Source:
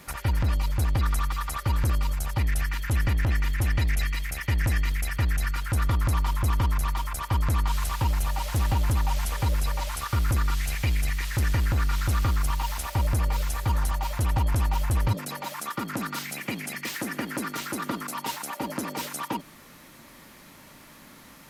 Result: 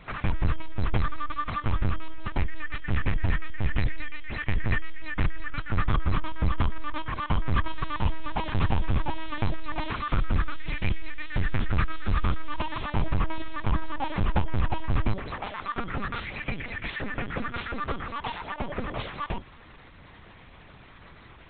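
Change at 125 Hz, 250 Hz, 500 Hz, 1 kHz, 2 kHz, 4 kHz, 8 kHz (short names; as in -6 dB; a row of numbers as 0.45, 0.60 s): -4.0 dB, 0.0 dB, +1.0 dB, -0.5 dB, -0.5 dB, -4.0 dB, under -40 dB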